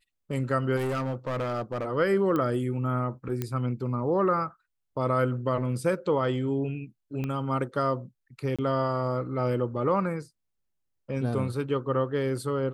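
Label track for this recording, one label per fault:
0.760000	1.860000	clipped -26 dBFS
2.360000	2.360000	pop -17 dBFS
3.420000	3.420000	pop -16 dBFS
7.240000	7.240000	pop -20 dBFS
8.560000	8.590000	gap 26 ms

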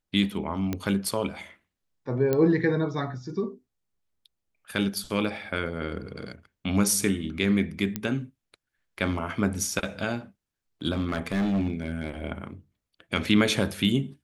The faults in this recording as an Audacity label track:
0.730000	0.730000	pop -15 dBFS
2.330000	2.330000	pop -12 dBFS
7.960000	7.960000	pop -13 dBFS
10.920000	12.110000	clipped -22 dBFS

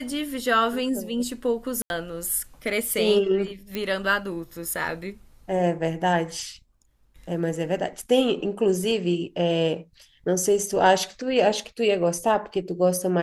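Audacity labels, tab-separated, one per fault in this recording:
1.820000	1.900000	gap 81 ms
3.750000	3.750000	pop -14 dBFS

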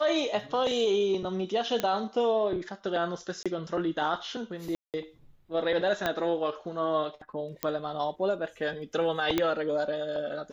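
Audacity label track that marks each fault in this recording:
1.800000	1.800000	pop -13 dBFS
3.430000	3.460000	gap 26 ms
4.750000	4.940000	gap 0.188 s
6.060000	6.060000	pop -13 dBFS
7.630000	7.630000	pop -12 dBFS
9.380000	9.380000	pop -11 dBFS

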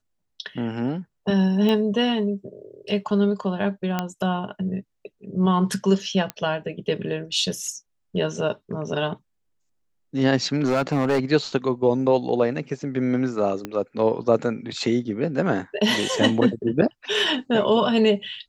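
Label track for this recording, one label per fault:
1.690000	1.690000	pop -13 dBFS
3.990000	3.990000	pop -10 dBFS
6.300000	6.300000	pop -12 dBFS
10.640000	11.200000	clipped -16 dBFS
13.650000	13.650000	pop -15 dBFS

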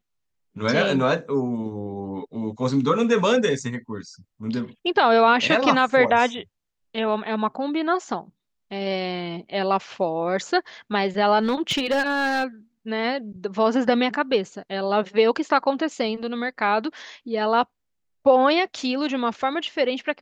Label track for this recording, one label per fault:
11.410000	12.440000	clipped -17.5 dBFS

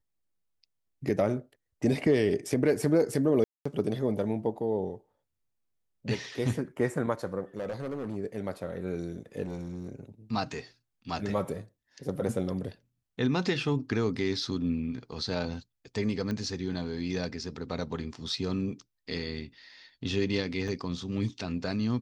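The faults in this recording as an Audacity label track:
3.440000	3.650000	gap 0.215 s
7.570000	8.170000	clipped -30 dBFS
9.420000	9.920000	clipped -31.5 dBFS
16.310000	16.310000	pop -21 dBFS
20.680000	20.680000	gap 2.3 ms

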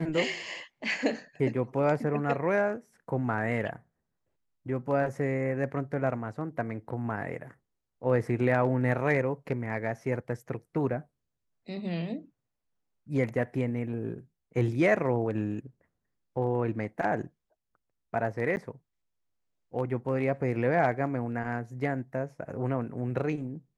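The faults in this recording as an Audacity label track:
18.560000	18.570000	gap 9.9 ms

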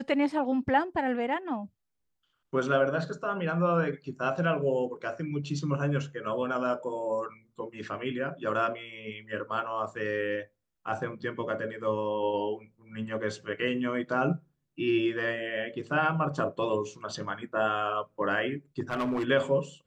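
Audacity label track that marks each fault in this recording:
18.800000	19.250000	clipped -25.5 dBFS

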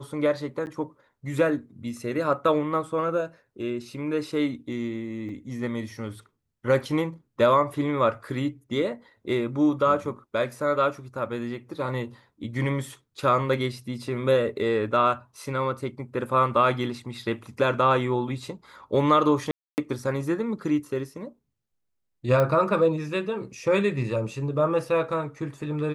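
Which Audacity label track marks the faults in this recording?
0.660000	0.670000	gap 9.8 ms
5.290000	5.290000	gap 3 ms
19.510000	19.780000	gap 0.269 s
22.400000	22.400000	pop -13 dBFS

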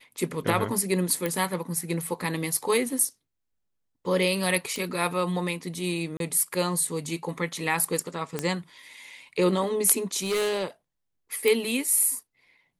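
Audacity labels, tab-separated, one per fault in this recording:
1.260000	1.260000	pop -13 dBFS
4.760000	4.760000	pop
6.170000	6.200000	gap 32 ms
8.390000	8.390000	pop -12 dBFS
10.230000	10.640000	clipped -23 dBFS
11.480000	11.480000	pop

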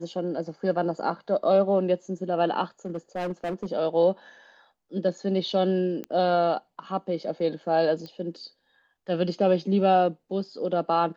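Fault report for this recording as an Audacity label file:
2.850000	3.660000	clipped -25.5 dBFS
6.040000	6.040000	pop -21 dBFS
8.060000	8.060000	pop -27 dBFS

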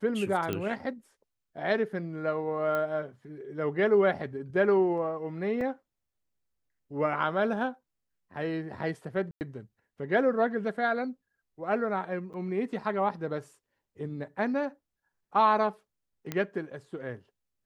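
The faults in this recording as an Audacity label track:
0.530000	0.530000	pop -17 dBFS
2.750000	2.750000	pop -19 dBFS
5.610000	5.610000	gap 2.8 ms
9.310000	9.410000	gap 99 ms
12.330000	12.340000	gap 8.4 ms
16.320000	16.320000	pop -17 dBFS

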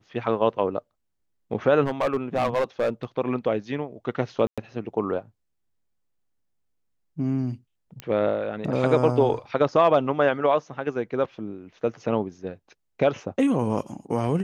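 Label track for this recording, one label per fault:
1.840000	3.050000	clipped -18.5 dBFS
4.470000	4.580000	gap 0.106 s
8.000000	8.000000	pop -17 dBFS

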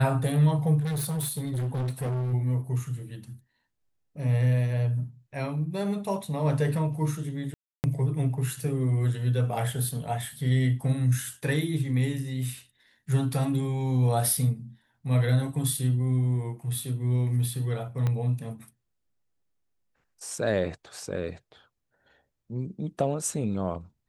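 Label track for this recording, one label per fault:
0.800000	2.340000	clipped -26.5 dBFS
7.540000	7.840000	gap 0.299 s
18.070000	18.070000	pop -17 dBFS

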